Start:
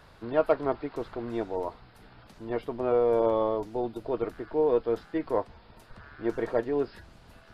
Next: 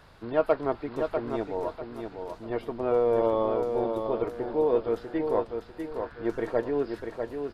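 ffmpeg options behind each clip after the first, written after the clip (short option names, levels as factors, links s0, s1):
-af "aecho=1:1:646|1292|1938|2584:0.501|0.155|0.0482|0.0149"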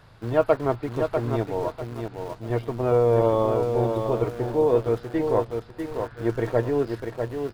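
-filter_complex "[0:a]asplit=2[s0][s1];[s1]aeval=exprs='val(0)*gte(abs(val(0)),0.0141)':c=same,volume=0.531[s2];[s0][s2]amix=inputs=2:normalize=0,equalizer=f=120:t=o:w=0.43:g=14.5"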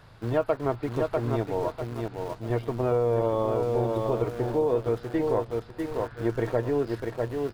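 -af "acompressor=threshold=0.0794:ratio=3"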